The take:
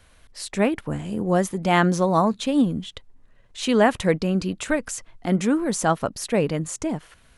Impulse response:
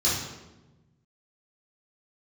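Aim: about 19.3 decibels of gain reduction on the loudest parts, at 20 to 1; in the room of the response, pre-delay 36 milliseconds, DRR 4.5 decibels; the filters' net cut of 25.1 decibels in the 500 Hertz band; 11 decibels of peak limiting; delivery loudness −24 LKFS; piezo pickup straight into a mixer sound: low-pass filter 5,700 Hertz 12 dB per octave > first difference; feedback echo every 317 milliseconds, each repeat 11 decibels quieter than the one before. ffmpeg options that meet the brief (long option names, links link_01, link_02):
-filter_complex "[0:a]equalizer=frequency=500:width_type=o:gain=-3.5,acompressor=threshold=-34dB:ratio=20,alimiter=level_in=7.5dB:limit=-24dB:level=0:latency=1,volume=-7.5dB,aecho=1:1:317|634|951:0.282|0.0789|0.0221,asplit=2[link_01][link_02];[1:a]atrim=start_sample=2205,adelay=36[link_03];[link_02][link_03]afir=irnorm=-1:irlink=0,volume=-16.5dB[link_04];[link_01][link_04]amix=inputs=2:normalize=0,lowpass=5700,aderivative,volume=27.5dB"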